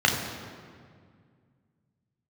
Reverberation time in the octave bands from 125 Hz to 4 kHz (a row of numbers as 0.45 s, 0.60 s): 3.0 s, 2.7 s, 2.1 s, 1.9 s, 1.7 s, 1.3 s